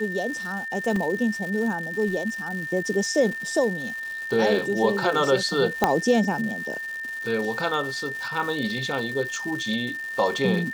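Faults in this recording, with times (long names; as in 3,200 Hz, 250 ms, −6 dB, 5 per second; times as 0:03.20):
surface crackle 340 per second −32 dBFS
whistle 1,800 Hz −30 dBFS
0:00.96: drop-out 2.5 ms
0:05.84: click −5 dBFS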